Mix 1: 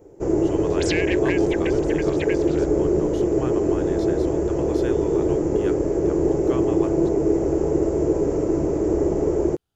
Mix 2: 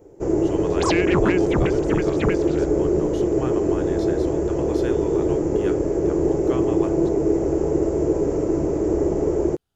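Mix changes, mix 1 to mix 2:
second sound: remove brick-wall FIR high-pass 1500 Hz; reverb: on, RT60 0.50 s

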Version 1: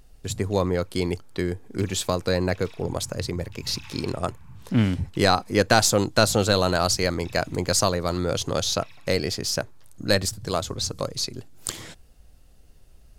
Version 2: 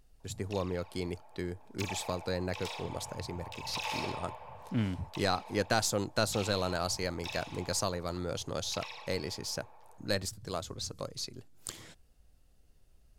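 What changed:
speech -11.0 dB; background: remove ladder high-pass 1200 Hz, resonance 50%

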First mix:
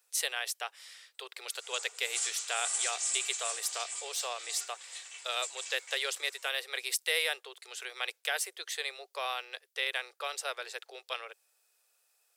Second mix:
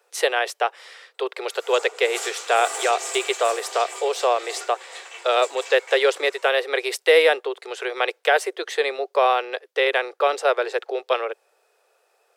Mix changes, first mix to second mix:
background: remove steep low-pass 10000 Hz 96 dB/oct; master: remove differentiator

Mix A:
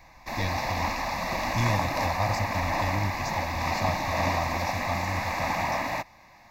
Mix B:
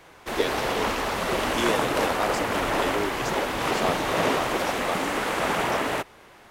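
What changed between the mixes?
speech: add HPF 250 Hz 24 dB/oct; master: remove fixed phaser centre 2100 Hz, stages 8

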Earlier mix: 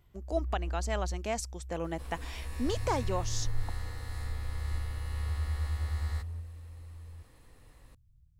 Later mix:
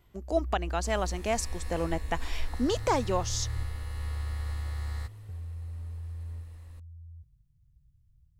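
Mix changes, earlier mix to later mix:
speech +4.5 dB; second sound: entry -1.15 s

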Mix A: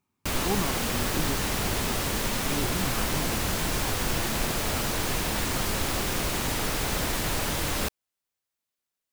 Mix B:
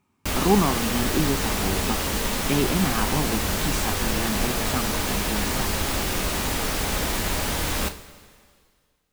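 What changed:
speech +9.5 dB; reverb: on

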